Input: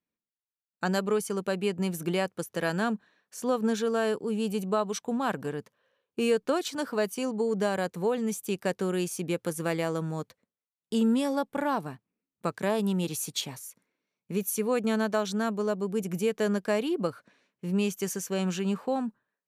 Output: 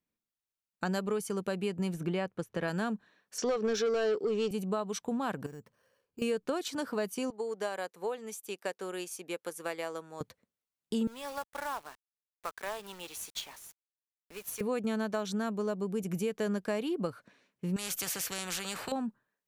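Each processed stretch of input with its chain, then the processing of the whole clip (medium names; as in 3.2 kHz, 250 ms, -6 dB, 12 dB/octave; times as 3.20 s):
1.94–2.68 s: Bessel low-pass 9.8 kHz + tone controls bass +1 dB, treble -9 dB
3.38–4.51 s: cabinet simulation 150–6800 Hz, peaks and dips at 410 Hz +9 dB, 950 Hz -7 dB, 5.5 kHz +10 dB + overdrive pedal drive 15 dB, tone 4.6 kHz, clips at -14.5 dBFS
5.46–6.22 s: bass shelf 170 Hz +6.5 dB + compression 2.5:1, threshold -50 dBFS + careless resampling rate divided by 6×, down filtered, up hold
7.30–10.21 s: high-pass 460 Hz + upward expansion, over -44 dBFS
11.07–14.61 s: high-pass 950 Hz + treble shelf 2.6 kHz -9 dB + companded quantiser 4-bit
17.76–18.92 s: peaking EQ 1 kHz -9.5 dB 0.3 oct + spectrum-flattening compressor 4:1
whole clip: compression 2:1, threshold -34 dBFS; bass shelf 90 Hz +8 dB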